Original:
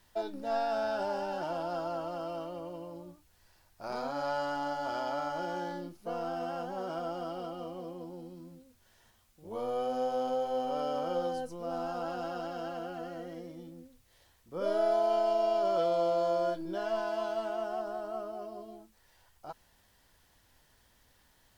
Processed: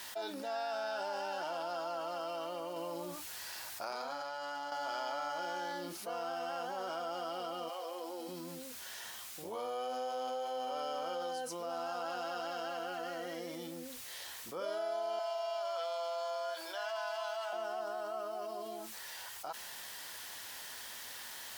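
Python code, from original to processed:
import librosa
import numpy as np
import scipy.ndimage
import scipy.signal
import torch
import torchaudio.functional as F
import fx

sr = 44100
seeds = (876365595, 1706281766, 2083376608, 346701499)

y = fx.over_compress(x, sr, threshold_db=-42.0, ratio=-1.0, at=(2.76, 4.72))
y = fx.highpass(y, sr, hz=fx.line((7.68, 580.0), (8.27, 270.0)), slope=24, at=(7.68, 8.27), fade=0.02)
y = fx.highpass(y, sr, hz=630.0, slope=24, at=(15.19, 17.53))
y = fx.highpass(y, sr, hz=1400.0, slope=6)
y = fx.env_flatten(y, sr, amount_pct=70)
y = y * librosa.db_to_amplitude(-2.5)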